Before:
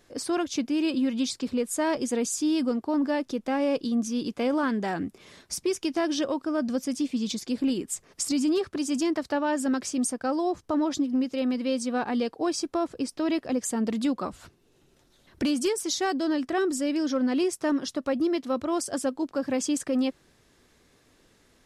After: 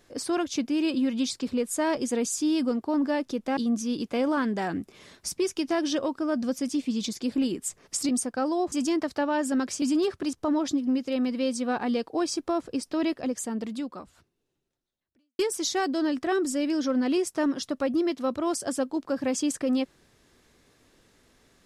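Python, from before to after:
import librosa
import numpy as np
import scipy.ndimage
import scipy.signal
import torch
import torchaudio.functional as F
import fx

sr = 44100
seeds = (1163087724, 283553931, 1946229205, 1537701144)

y = fx.edit(x, sr, fx.cut(start_s=3.57, length_s=0.26),
    fx.swap(start_s=8.35, length_s=0.51, other_s=9.96, other_length_s=0.63),
    fx.fade_out_span(start_s=13.29, length_s=2.36, curve='qua'), tone=tone)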